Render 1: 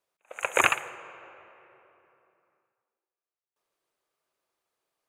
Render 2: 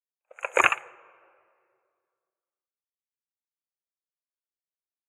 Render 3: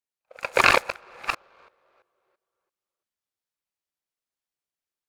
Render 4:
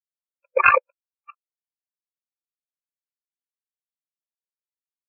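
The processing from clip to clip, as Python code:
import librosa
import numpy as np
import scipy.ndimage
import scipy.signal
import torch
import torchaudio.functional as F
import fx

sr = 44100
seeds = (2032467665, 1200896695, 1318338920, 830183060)

y1 = fx.spectral_expand(x, sr, expansion=1.5)
y1 = y1 * 10.0 ** (2.0 / 20.0)
y2 = fx.reverse_delay(y1, sr, ms=337, wet_db=-0.5)
y2 = fx.noise_mod_delay(y2, sr, seeds[0], noise_hz=1700.0, depth_ms=0.03)
y2 = y2 * 10.0 ** (1.5 / 20.0)
y3 = np.minimum(y2, 2.0 * 10.0 ** (-8.5 / 20.0) - y2)
y3 = fx.spectral_expand(y3, sr, expansion=4.0)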